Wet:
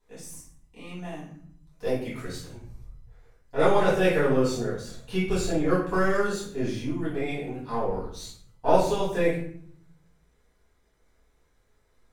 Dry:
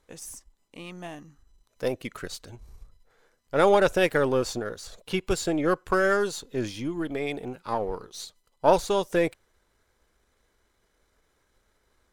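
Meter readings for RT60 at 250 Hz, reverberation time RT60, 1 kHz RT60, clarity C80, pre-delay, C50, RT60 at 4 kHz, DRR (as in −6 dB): 1.0 s, 0.60 s, 0.60 s, 7.5 dB, 4 ms, 3.5 dB, 0.40 s, −10.5 dB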